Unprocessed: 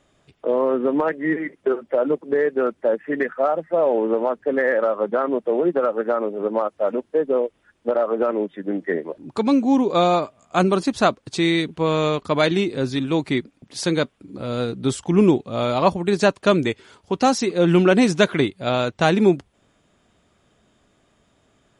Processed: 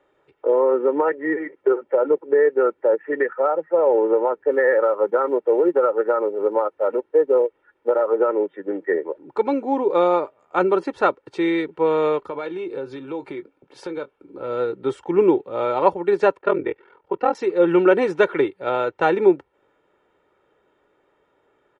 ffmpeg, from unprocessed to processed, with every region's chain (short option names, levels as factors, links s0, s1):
-filter_complex "[0:a]asettb=1/sr,asplit=3[s0][s1][s2];[s0]atrim=end=4.514[s3];[s1]atrim=start=4.51:end=8.17,asetpts=PTS-STARTPTS,afade=t=in:d=0.004:c=qsin,afade=t=out:st=3.656:d=0.004:c=qsin,bandreject=f=6900:w=16,acrusher=bits=8:mode=log:mix=0:aa=0.000001[s4];[s2]atrim=start=8.166[s5];[s3][s4]acrossfade=d=0.004:c1=hsin:c2=qsin[s6];[s6][s5]acrossfade=d=0.004:c1=qsin:c2=hsin,asettb=1/sr,asplit=3[s7][s8][s9];[s7]atrim=end=12.284[s10];[s8]atrim=start=12.28:end=14.44,asetpts=PTS-STARTPTS,afade=t=in:d=0.004:c=qsin,afade=t=out:st=2.156:d=0.004:c=qsin,bandreject=f=1900:w=8.9,asplit=2[s11][s12];[s12]adelay=22,volume=0.2[s13];[s11][s13]amix=inputs=2:normalize=0,atrim=end_sample=95256,acompressor=threshold=0.0631:ratio=10:attack=3.2:release=140:knee=1:detection=peak[s14];[s9]atrim=start=14.436[s15];[s10][s14]acrossfade=d=0.004:c1=hsin:c2=qsin[s16];[s16][s15]acrossfade=d=0.004:c1=qsin:c2=hsin,asettb=1/sr,asplit=3[s17][s18][s19];[s17]atrim=end=16.374[s20];[s18]atrim=start=16.37:end=17.35,asetpts=PTS-STARTPTS,afade=t=in:d=0.004:c=qsin,afade=t=out:st=0.976:d=0.004:c=qsin,lowpass=2800,aeval=exprs='val(0)*sin(2*PI*21*n/s)':c=same[s21];[s19]atrim=start=17.346[s22];[s20][s21]acrossfade=d=0.004:c1=hsin:c2=qsin[s23];[s23][s22]acrossfade=d=0.004:c1=qsin:c2=hsin,acrossover=split=230 2300:gain=0.112 1 0.0794[s24][s25][s26];[s24][s25][s26]amix=inputs=3:normalize=0,aecho=1:1:2.2:0.67"